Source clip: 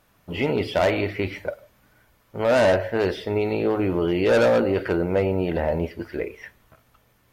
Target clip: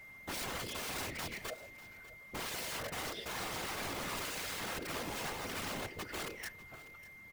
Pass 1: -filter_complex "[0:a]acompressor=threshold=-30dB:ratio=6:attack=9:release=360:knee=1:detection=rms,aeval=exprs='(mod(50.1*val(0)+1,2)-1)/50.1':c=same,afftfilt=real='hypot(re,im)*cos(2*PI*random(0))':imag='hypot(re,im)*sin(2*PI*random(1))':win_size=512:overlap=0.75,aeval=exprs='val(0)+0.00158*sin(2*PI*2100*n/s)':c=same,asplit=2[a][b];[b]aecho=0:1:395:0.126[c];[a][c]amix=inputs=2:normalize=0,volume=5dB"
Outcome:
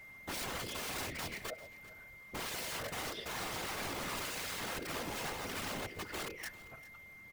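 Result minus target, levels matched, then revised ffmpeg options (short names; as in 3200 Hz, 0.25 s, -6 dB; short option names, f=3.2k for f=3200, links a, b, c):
echo 0.201 s early
-filter_complex "[0:a]acompressor=threshold=-30dB:ratio=6:attack=9:release=360:knee=1:detection=rms,aeval=exprs='(mod(50.1*val(0)+1,2)-1)/50.1':c=same,afftfilt=real='hypot(re,im)*cos(2*PI*random(0))':imag='hypot(re,im)*sin(2*PI*random(1))':win_size=512:overlap=0.75,aeval=exprs='val(0)+0.00158*sin(2*PI*2100*n/s)':c=same,asplit=2[a][b];[b]aecho=0:1:596:0.126[c];[a][c]amix=inputs=2:normalize=0,volume=5dB"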